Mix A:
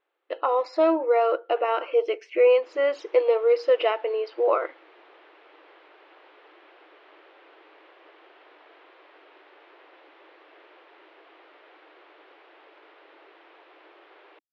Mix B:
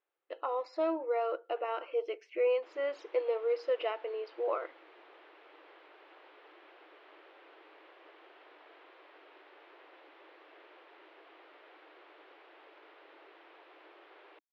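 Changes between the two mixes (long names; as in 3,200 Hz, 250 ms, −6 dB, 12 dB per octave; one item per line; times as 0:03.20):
speech −11.0 dB
background −4.0 dB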